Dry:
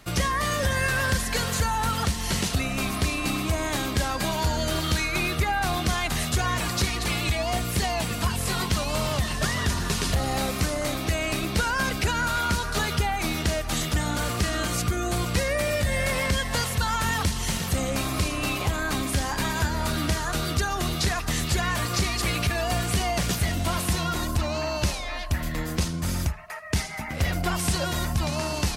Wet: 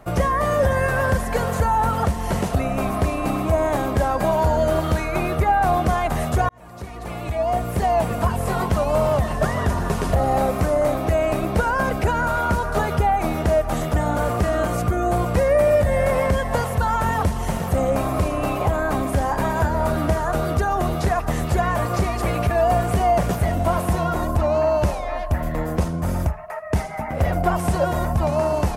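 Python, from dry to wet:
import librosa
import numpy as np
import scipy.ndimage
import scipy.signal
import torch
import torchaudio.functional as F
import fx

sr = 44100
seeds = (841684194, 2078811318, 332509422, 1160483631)

y = fx.edit(x, sr, fx.fade_in_span(start_s=6.49, length_s=1.54), tone=tone)
y = fx.curve_eq(y, sr, hz=(320.0, 640.0, 4200.0, 12000.0), db=(0, 8, -16, -8))
y = y * librosa.db_to_amplitude(4.5)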